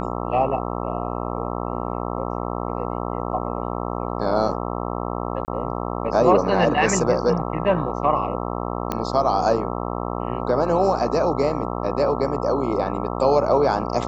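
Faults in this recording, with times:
buzz 60 Hz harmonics 22 -27 dBFS
5.45–5.48 gap 29 ms
8.92 pop -10 dBFS

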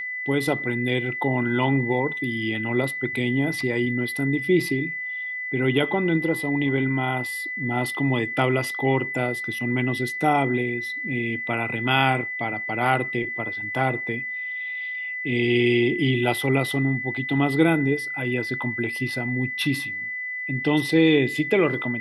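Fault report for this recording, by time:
tone 2000 Hz -28 dBFS

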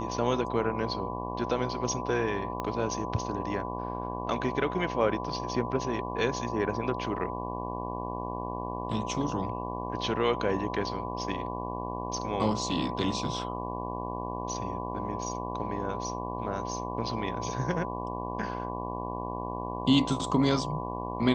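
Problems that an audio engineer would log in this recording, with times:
buzz 60 Hz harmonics 19 -36 dBFS
tone 1000 Hz -37 dBFS
2.6 pop -19 dBFS

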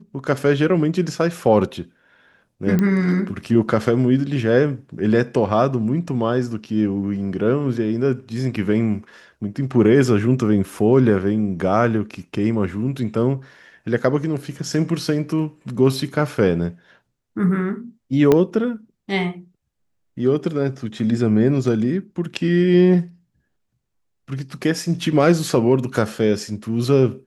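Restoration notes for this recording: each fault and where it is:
2.79 pop -9 dBFS
18.32 pop -4 dBFS

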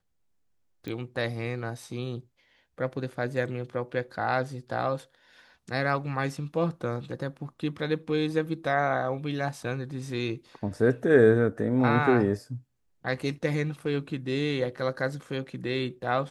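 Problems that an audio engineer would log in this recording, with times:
0.88 pop -23 dBFS

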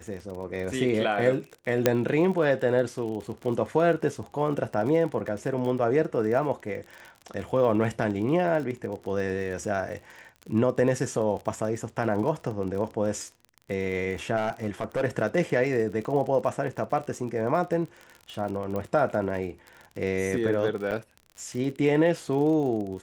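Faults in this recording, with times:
crackle 41/s -34 dBFS
1.86 pop -5 dBFS
14.36–15.02 clipped -22.5 dBFS
18.76 pop -20 dBFS
20.91–20.92 gap 7.1 ms

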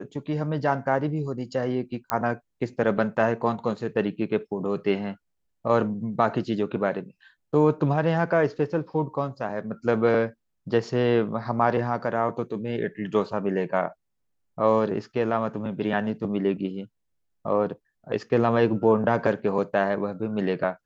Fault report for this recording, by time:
2.1 pop -10 dBFS

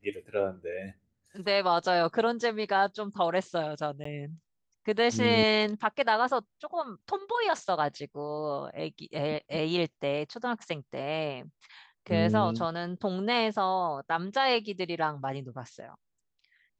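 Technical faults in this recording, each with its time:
4.04–4.05 gap 14 ms

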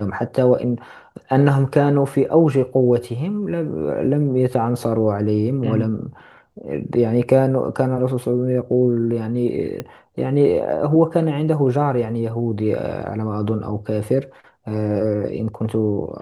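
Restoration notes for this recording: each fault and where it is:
9.8 pop -13 dBFS

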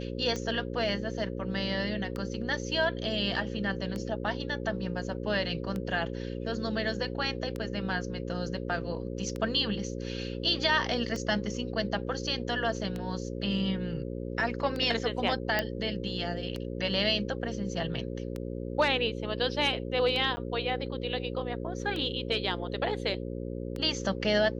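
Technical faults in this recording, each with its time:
buzz 60 Hz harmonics 9 -36 dBFS
tick 33 1/3 rpm -22 dBFS
15.59 pop -13 dBFS
20.36–20.37 gap 10 ms

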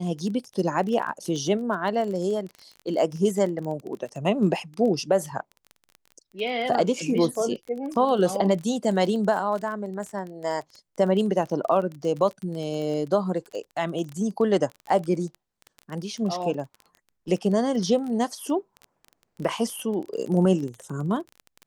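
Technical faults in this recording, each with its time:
crackle 20/s -31 dBFS

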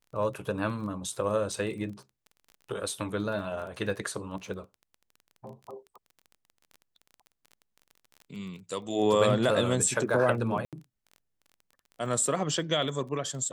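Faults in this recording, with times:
crackle 22/s -39 dBFS
1.52 gap 4.1 ms
10.65–10.73 gap 77 ms

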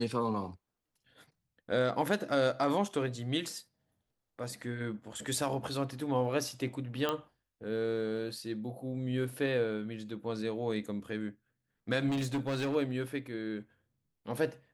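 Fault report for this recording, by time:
7.09 pop -17 dBFS
12.08–12.76 clipped -29 dBFS

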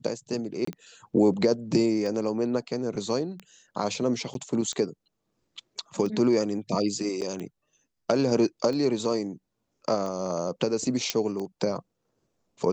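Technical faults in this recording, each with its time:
tick 45 rpm -23 dBFS
0.65–0.67 gap 24 ms
4.34–4.35 gap
7.21–7.22 gap 8.1 ms
11.1 pop -9 dBFS

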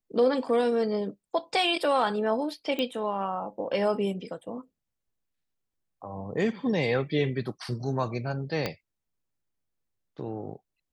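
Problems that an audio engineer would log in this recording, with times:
2.79 pop -17 dBFS
8.66 pop -14 dBFS

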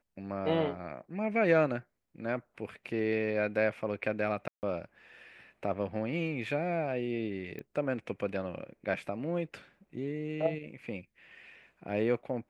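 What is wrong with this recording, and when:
4.48–4.63 gap 0.149 s
7.59 pop -29 dBFS

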